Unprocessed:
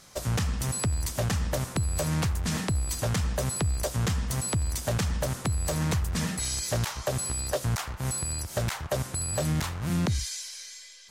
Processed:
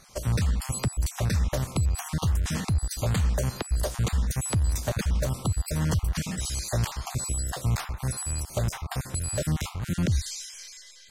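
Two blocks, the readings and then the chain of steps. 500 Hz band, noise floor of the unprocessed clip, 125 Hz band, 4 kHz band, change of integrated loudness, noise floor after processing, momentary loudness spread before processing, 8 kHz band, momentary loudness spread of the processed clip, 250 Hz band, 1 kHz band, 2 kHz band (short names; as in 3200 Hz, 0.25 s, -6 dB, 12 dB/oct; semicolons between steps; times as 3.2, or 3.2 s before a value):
-2.0 dB, -44 dBFS, +2.0 dB, -1.5 dB, +0.5 dB, -47 dBFS, 3 LU, -1.5 dB, 5 LU, 0.0 dB, -1.0 dB, -1.5 dB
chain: random spectral dropouts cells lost 29%; low shelf 80 Hz +8 dB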